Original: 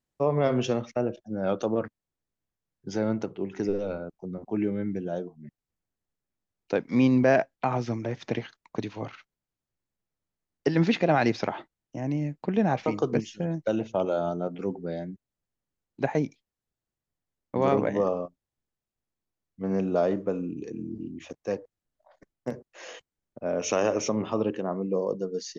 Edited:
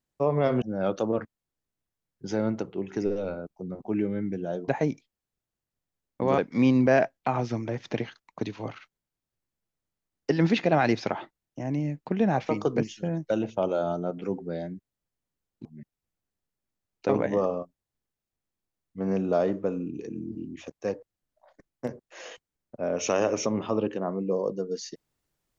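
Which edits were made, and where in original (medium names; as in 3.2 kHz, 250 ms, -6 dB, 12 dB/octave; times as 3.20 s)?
0.62–1.25 s: delete
5.31–6.75 s: swap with 16.02–17.72 s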